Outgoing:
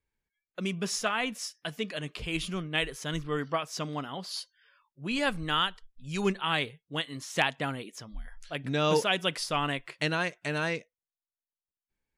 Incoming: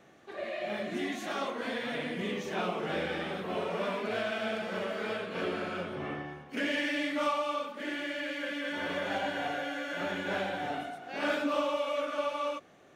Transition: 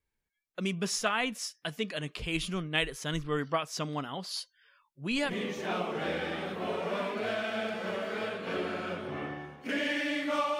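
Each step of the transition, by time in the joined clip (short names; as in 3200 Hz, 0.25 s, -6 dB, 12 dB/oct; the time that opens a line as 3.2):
outgoing
5.27 switch to incoming from 2.15 s, crossfade 0.12 s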